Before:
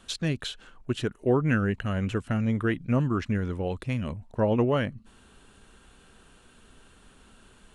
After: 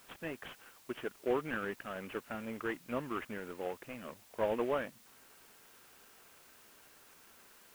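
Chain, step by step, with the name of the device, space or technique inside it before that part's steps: army field radio (BPF 400–3000 Hz; CVSD 16 kbps; white noise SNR 21 dB); gain -5 dB

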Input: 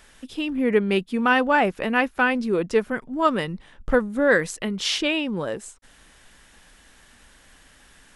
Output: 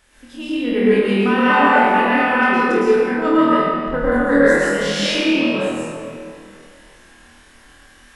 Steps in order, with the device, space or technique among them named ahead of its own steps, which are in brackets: tunnel (flutter echo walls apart 4.3 m, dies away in 0.49 s; reverb RT60 2.5 s, pre-delay 0.104 s, DRR -9.5 dB); 3.37–4.12 LPF 3800 Hz 6 dB/oct; gain -6.5 dB

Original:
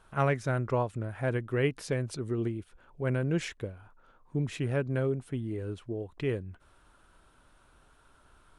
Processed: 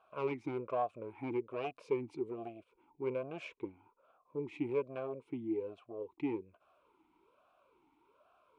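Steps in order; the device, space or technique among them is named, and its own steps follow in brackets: talk box (tube stage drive 25 dB, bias 0.5; vowel sweep a-u 1.2 Hz); gain +8 dB

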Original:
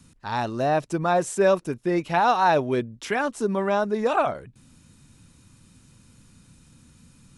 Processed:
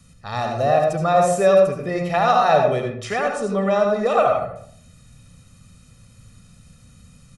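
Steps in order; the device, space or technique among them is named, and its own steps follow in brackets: 3.04–4.03 steep low-pass 10000 Hz 72 dB/oct; microphone above a desk (comb 1.6 ms, depth 70%; reverb RT60 0.60 s, pre-delay 68 ms, DRR 2 dB)

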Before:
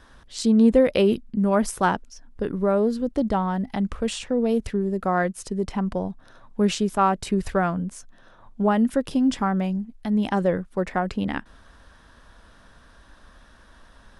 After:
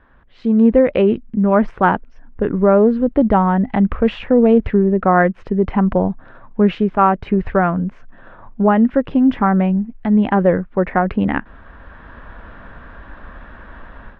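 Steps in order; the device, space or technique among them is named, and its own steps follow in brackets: action camera in a waterproof case (LPF 2400 Hz 24 dB/oct; AGC gain up to 15.5 dB; gain -1 dB; AAC 96 kbps 44100 Hz)

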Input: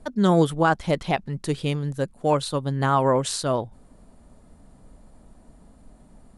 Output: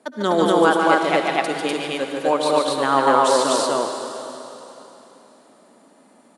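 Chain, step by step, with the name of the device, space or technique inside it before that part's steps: stadium PA (HPF 250 Hz 24 dB/oct; bell 2200 Hz +3.5 dB 2.6 oct; loudspeakers at several distances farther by 50 m -4 dB, 85 m 0 dB; reverb RT60 3.2 s, pre-delay 58 ms, DRR 5.5 dB)

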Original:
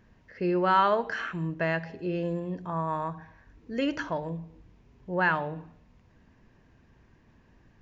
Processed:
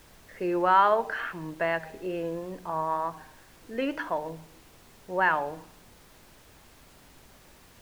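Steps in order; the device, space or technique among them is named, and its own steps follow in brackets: horn gramophone (BPF 280–3400 Hz; bell 830 Hz +4 dB; wow and flutter; pink noise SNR 24 dB)

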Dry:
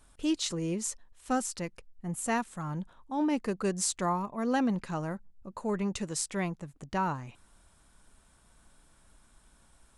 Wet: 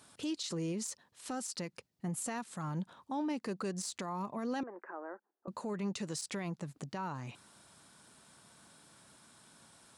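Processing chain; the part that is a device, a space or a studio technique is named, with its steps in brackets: broadcast voice chain (HPF 110 Hz 24 dB/oct; de-esser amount 60%; compressor 3:1, threshold -38 dBFS, peak gain reduction 10.5 dB; bell 4500 Hz +5.5 dB 0.71 oct; limiter -33.5 dBFS, peak gain reduction 11.5 dB); 4.63–5.48 elliptic band-pass 340–1700 Hz, stop band 40 dB; gain +4 dB

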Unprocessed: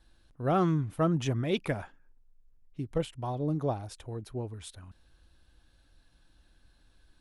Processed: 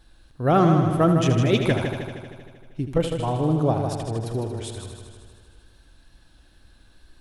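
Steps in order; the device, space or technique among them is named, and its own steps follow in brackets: multi-head tape echo (multi-head echo 78 ms, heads first and second, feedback 64%, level -9.5 dB; wow and flutter 24 cents); gain +8 dB

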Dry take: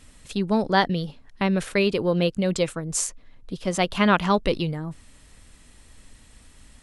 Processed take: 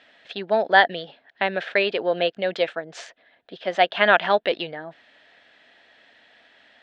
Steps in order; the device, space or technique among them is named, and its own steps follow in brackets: phone earpiece (speaker cabinet 480–3800 Hz, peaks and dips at 680 Hz +10 dB, 1100 Hz -8 dB, 1700 Hz +9 dB, 3400 Hz +4 dB); gain +2 dB

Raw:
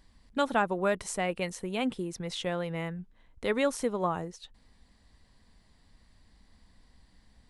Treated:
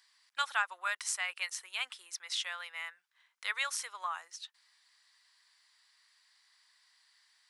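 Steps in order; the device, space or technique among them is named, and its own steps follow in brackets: headphones lying on a table (HPF 1200 Hz 24 dB/oct; bell 5300 Hz +4 dB 0.55 oct); gain +1.5 dB

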